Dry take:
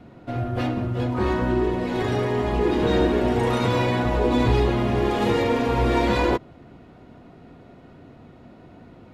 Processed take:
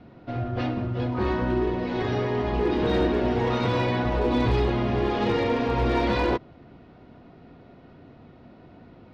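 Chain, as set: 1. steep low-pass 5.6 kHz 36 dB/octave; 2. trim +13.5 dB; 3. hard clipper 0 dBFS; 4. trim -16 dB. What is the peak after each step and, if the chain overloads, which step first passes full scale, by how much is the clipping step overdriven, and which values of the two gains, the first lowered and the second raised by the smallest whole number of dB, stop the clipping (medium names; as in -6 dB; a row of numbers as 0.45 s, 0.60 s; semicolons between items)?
-8.0 dBFS, +5.5 dBFS, 0.0 dBFS, -16.0 dBFS; step 2, 5.5 dB; step 2 +7.5 dB, step 4 -10 dB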